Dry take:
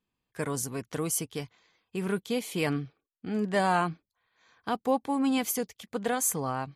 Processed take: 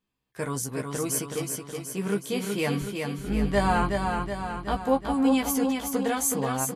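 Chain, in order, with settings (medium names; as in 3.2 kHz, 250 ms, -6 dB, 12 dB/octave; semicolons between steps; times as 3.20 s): 2.81–4.77 s: octave divider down 2 oct, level 0 dB; doubling 15 ms -5 dB; feedback delay 372 ms, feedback 56%, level -4.5 dB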